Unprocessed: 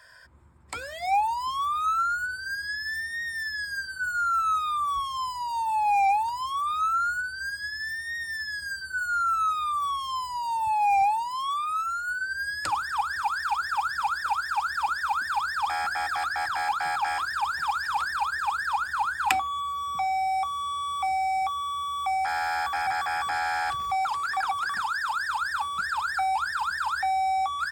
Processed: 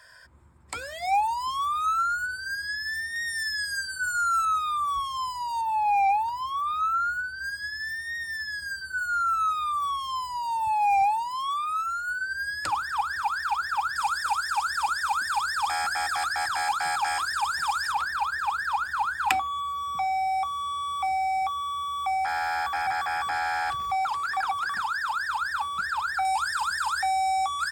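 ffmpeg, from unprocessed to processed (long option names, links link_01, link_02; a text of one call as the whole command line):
ffmpeg -i in.wav -af "asetnsamples=nb_out_samples=441:pad=0,asendcmd='3.16 equalizer g 10.5;4.45 equalizer g 0.5;5.61 equalizer g -8;7.44 equalizer g -1;13.96 equalizer g 9;17.92 equalizer g -2;26.25 equalizer g 9',equalizer=frequency=8400:width_type=o:width=1.6:gain=2.5" out.wav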